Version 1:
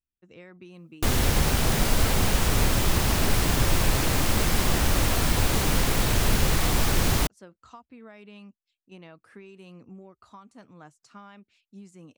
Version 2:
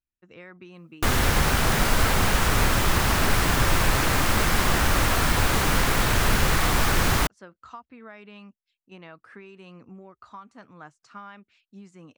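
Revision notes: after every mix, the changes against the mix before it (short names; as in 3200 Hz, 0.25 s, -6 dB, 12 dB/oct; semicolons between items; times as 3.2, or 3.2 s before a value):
speech: add LPF 6800 Hz 12 dB/oct; master: add bell 1400 Hz +7.5 dB 1.6 oct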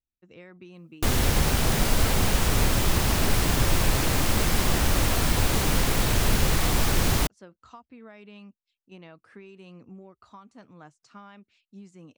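master: add bell 1400 Hz -7.5 dB 1.6 oct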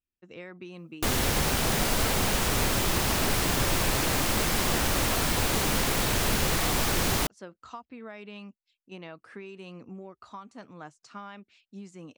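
speech +5.5 dB; master: add low shelf 150 Hz -8.5 dB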